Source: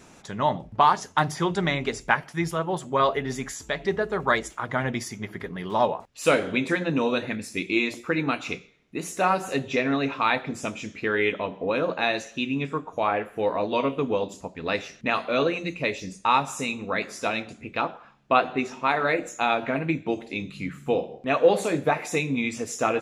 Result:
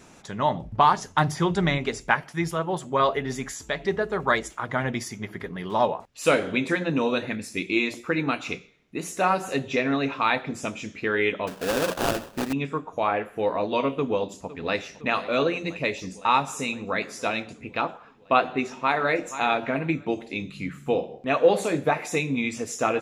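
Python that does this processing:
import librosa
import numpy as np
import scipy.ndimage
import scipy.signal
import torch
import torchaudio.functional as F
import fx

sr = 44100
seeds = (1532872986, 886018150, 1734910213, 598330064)

y = fx.low_shelf(x, sr, hz=120.0, db=10.5, at=(0.57, 1.78))
y = fx.sample_hold(y, sr, seeds[0], rate_hz=2100.0, jitter_pct=20, at=(11.47, 12.53))
y = fx.echo_throw(y, sr, start_s=13.94, length_s=0.84, ms=510, feedback_pct=75, wet_db=-16.5)
y = fx.echo_throw(y, sr, start_s=18.67, length_s=0.42, ms=480, feedback_pct=15, wet_db=-12.5)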